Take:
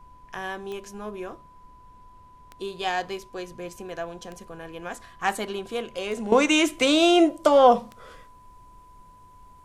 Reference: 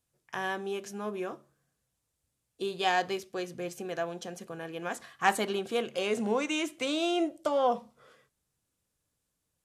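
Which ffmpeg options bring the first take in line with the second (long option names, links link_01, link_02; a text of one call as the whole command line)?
ffmpeg -i in.wav -af "adeclick=threshold=4,bandreject=frequency=1000:width=30,agate=range=-21dB:threshold=-43dB,asetnsamples=nb_out_samples=441:pad=0,asendcmd='6.32 volume volume -11dB',volume=0dB" out.wav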